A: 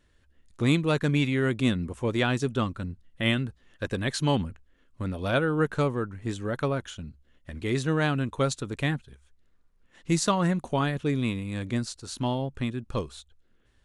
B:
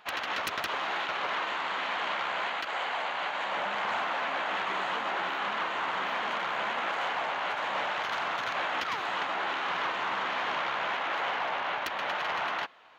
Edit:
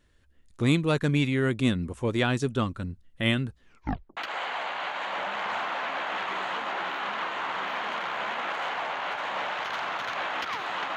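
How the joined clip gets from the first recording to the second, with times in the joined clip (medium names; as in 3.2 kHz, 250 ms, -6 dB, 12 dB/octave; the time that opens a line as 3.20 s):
A
3.64 s: tape stop 0.53 s
4.17 s: go over to B from 2.56 s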